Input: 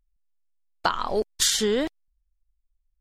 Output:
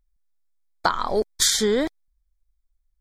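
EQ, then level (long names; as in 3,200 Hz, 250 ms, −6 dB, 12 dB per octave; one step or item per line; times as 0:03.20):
Butterworth band-reject 2,800 Hz, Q 3.8
+2.5 dB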